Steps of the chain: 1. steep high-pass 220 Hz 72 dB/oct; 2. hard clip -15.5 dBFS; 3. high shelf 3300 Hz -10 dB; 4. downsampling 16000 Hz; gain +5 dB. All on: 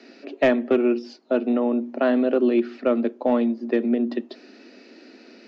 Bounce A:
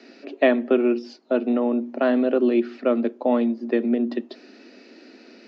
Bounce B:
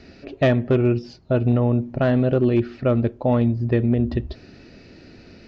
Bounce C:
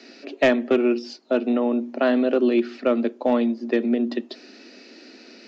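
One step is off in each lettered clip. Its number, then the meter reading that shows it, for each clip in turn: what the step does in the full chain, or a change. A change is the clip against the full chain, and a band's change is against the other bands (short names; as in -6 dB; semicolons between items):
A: 2, distortion -23 dB; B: 1, crest factor change -2.0 dB; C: 3, 4 kHz band +4.5 dB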